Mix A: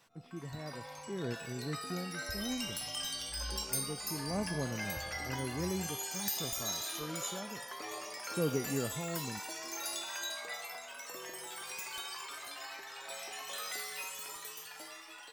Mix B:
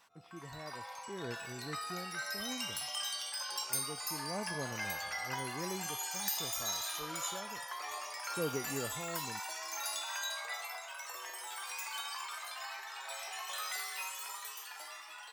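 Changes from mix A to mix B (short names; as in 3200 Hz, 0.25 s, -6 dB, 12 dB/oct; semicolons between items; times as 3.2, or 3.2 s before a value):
speech: add bell 180 Hz -7.5 dB 2.2 oct; background: add resonant high-pass 880 Hz, resonance Q 1.5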